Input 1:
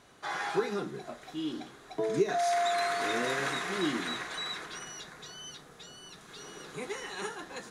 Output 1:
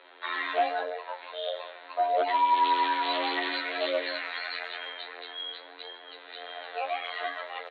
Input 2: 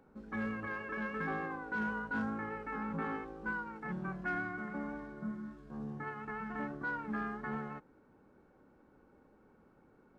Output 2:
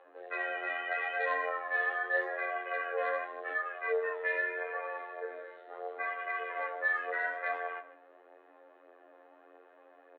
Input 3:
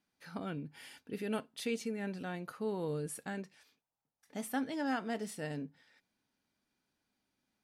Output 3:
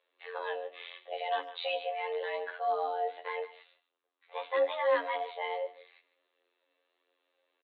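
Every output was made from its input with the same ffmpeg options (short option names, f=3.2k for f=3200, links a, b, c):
-filter_complex "[0:a]aemphasis=mode=production:type=50fm,asplit=2[a][b];[b]aecho=0:1:153:0.141[c];[a][c]amix=inputs=2:normalize=0,afftfilt=real='hypot(re,im)*cos(PI*b)':imag='0':win_size=2048:overlap=0.75,aresample=8000,aeval=exprs='0.158*sin(PI/2*2.82*val(0)/0.158)':c=same,aresample=44100,asplit=2[d][e];[e]adelay=100,highpass=300,lowpass=3.4k,asoftclip=type=hard:threshold=-21.5dB,volume=-23dB[f];[d][f]amix=inputs=2:normalize=0,flanger=delay=7.3:depth=9.4:regen=39:speed=0.81:shape=triangular,afreqshift=280"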